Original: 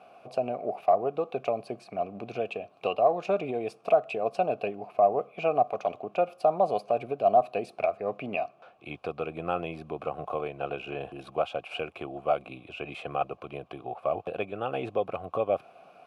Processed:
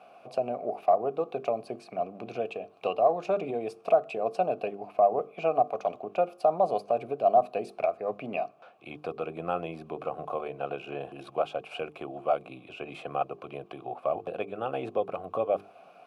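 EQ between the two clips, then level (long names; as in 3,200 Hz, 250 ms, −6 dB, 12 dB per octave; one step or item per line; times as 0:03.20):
high-pass filter 120 Hz
dynamic equaliser 2,600 Hz, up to −4 dB, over −48 dBFS, Q 1.1
mains-hum notches 50/100/150/200/250/300/350/400/450 Hz
0.0 dB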